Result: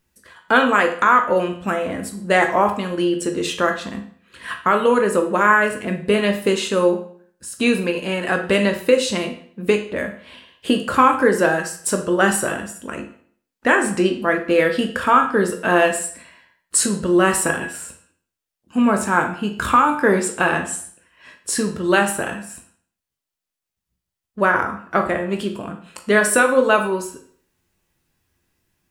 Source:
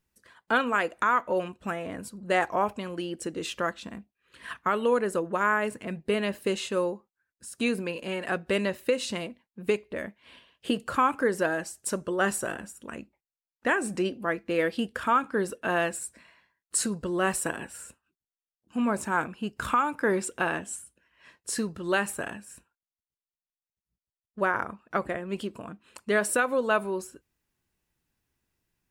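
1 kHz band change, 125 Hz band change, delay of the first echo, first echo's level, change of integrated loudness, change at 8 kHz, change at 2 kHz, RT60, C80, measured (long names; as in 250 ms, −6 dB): +10.0 dB, +10.0 dB, no echo audible, no echo audible, +10.0 dB, +10.0 dB, +10.0 dB, 0.55 s, 13.0 dB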